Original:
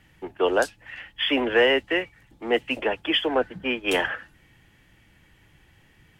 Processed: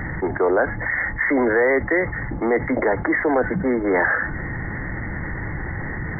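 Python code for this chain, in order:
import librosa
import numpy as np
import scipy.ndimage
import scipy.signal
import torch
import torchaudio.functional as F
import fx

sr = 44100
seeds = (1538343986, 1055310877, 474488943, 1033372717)

p1 = 10.0 ** (-21.5 / 20.0) * (np.abs((x / 10.0 ** (-21.5 / 20.0) + 3.0) % 4.0 - 2.0) - 1.0)
p2 = x + (p1 * 10.0 ** (-10.0 / 20.0))
p3 = fx.brickwall_lowpass(p2, sr, high_hz=2200.0)
y = fx.env_flatten(p3, sr, amount_pct=70)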